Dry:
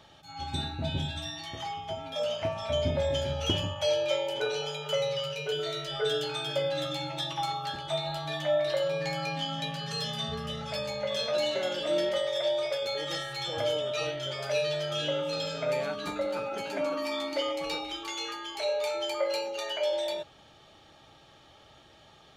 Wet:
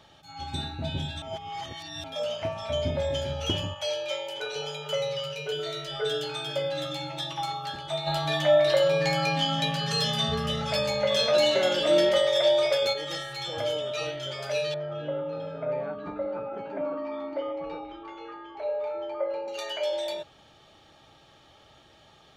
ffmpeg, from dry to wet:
ffmpeg -i in.wav -filter_complex "[0:a]asettb=1/sr,asplit=3[link_01][link_02][link_03];[link_01]atrim=end=3.744[link_04];[link_02]atrim=start=3.74:end=4.56,asetpts=PTS-STARTPTS,afade=type=in:duration=0.004:curve=qsin,afade=type=out:start_time=0.816:duration=0.004:curve=qsin,lowshelf=frequency=500:gain=-10.5[link_05];[link_03]atrim=start=4.556[link_06];[link_04][link_05]acrossfade=duration=0.004:curve1=hsin:curve2=qsin[link_07];[link_07][link_06]acrossfade=duration=0.004:curve1=qsin:curve2=hsin,asplit=3[link_08][link_09][link_10];[link_08]afade=type=out:start_time=8.06:duration=0.02[link_11];[link_09]acontrast=77,afade=type=in:start_time=8.06:duration=0.02,afade=type=out:start_time=12.92:duration=0.02[link_12];[link_10]afade=type=in:start_time=12.92:duration=0.02[link_13];[link_11][link_12][link_13]amix=inputs=3:normalize=0,asettb=1/sr,asplit=3[link_14][link_15][link_16];[link_14]atrim=end=14.744[link_17];[link_15]atrim=start=14.74:end=19.48,asetpts=PTS-STARTPTS,afade=type=in:duration=0.004:curve=qsin,afade=type=out:start_time=4.736:duration=0.004:curve=qsin,lowpass=1200[link_18];[link_16]atrim=start=19.476[link_19];[link_17][link_18]acrossfade=duration=0.004:curve1=hsin:curve2=qsin[link_20];[link_20][link_19]acrossfade=duration=0.004:curve1=qsin:curve2=hsin,asplit=3[link_21][link_22][link_23];[link_21]atrim=end=1.222[link_24];[link_22]atrim=start=1.218:end=2.042,asetpts=PTS-STARTPTS,areverse[link_25];[link_23]atrim=start=2.038[link_26];[link_24][link_25]acrossfade=duration=0.004:curve1=hsin:curve2=hsin[link_27];[link_27][link_26]acrossfade=duration=0.004:curve1=hsin:curve2=hsin" out.wav

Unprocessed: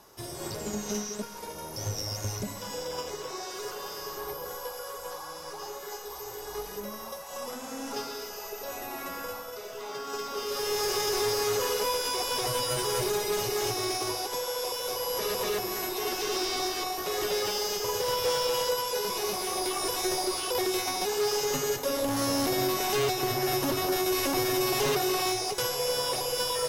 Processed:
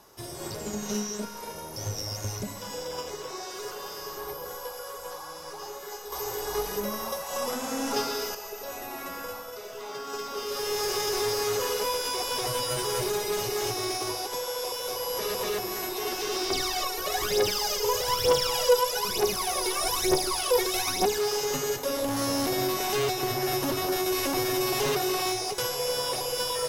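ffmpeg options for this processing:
ffmpeg -i in.wav -filter_complex "[0:a]asettb=1/sr,asplit=3[link_01][link_02][link_03];[link_01]atrim=end=0.794[link_04];[link_02]atrim=start=0.79:end=1.59,asetpts=PTS-STARTPTS,afade=type=in:duration=0.004:curve=qsin,afade=type=out:start_time=0.796:duration=0.004:curve=qsin,asplit=2[link_05][link_06];[link_06]adelay=33,volume=-4dB[link_07];[link_05][link_07]amix=inputs=2:normalize=0,atrim=end_sample=35280[link_08];[link_03]atrim=start=1.586[link_09];[link_04][link_08]acrossfade=duration=0.004:curve1=hsin:curve2=qsin[link_10];[link_10][link_09]acrossfade=duration=0.004:curve1=qsin:curve2=hsin,asettb=1/sr,asplit=3[link_11][link_12][link_13];[link_11]atrim=end=6.124[link_14];[link_12]atrim=start=6.12:end=8.35,asetpts=PTS-STARTPTS,afade=type=in:duration=0.004:curve=qsin,afade=type=out:start_time=2.226:duration=0.004:curve=qsin,acontrast=73[link_15];[link_13]atrim=start=8.346[link_16];[link_14][link_15]acrossfade=duration=0.004:curve1=hsin:curve2=qsin[link_17];[link_17][link_16]acrossfade=duration=0.004:curve1=qsin:curve2=hsin,asettb=1/sr,asplit=3[link_18][link_19][link_20];[link_18]atrim=end=16.504[link_21];[link_19]atrim=start=16.5:end=21.18,asetpts=PTS-STARTPTS,afade=type=in:duration=0.004:curve=qsin,afade=type=out:start_time=4.676:duration=0.004:curve=qsin,aphaser=in_gain=1:out_gain=1:delay=2.3:decay=0.72:speed=1.1:type=triangular[link_22];[link_20]atrim=start=21.176[link_23];[link_21][link_22]acrossfade=duration=0.004:curve1=hsin:curve2=qsin[link_24];[link_24][link_23]acrossfade=duration=0.004:curve1=qsin:curve2=hsin" out.wav

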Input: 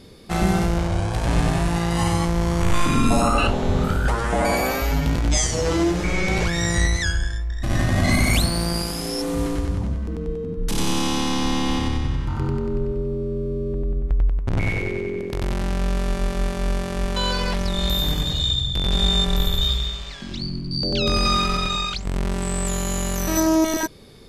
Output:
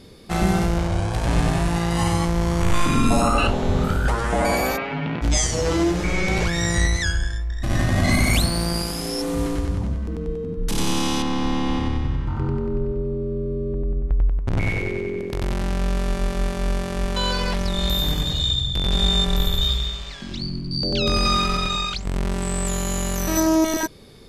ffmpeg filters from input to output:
ffmpeg -i in.wav -filter_complex "[0:a]asplit=3[link_01][link_02][link_03];[link_01]afade=type=out:start_time=4.76:duration=0.02[link_04];[link_02]highpass=frequency=140:width=0.5412,highpass=frequency=140:width=1.3066,equalizer=frequency=270:width_type=q:width=4:gain=-3,equalizer=frequency=530:width_type=q:width=4:gain=-3,equalizer=frequency=2500:width_type=q:width=4:gain=3,lowpass=frequency=3100:width=0.5412,lowpass=frequency=3100:width=1.3066,afade=type=in:start_time=4.76:duration=0.02,afade=type=out:start_time=5.21:duration=0.02[link_05];[link_03]afade=type=in:start_time=5.21:duration=0.02[link_06];[link_04][link_05][link_06]amix=inputs=3:normalize=0,asettb=1/sr,asplit=3[link_07][link_08][link_09];[link_07]atrim=end=11.224[link_10];[link_08]atrim=start=11.22:end=14.47,asetpts=PTS-STARTPTS,afade=type=in:duration=0.004:curve=qsin,afade=type=out:start_time=3.246:duration=0.004:curve=qsin,lowpass=frequency=2100:poles=1[link_11];[link_09]atrim=start=14.466[link_12];[link_10][link_11]acrossfade=duration=0.004:curve1=hsin:curve2=qsin[link_13];[link_13][link_12]acrossfade=duration=0.004:curve1=qsin:curve2=hsin" out.wav

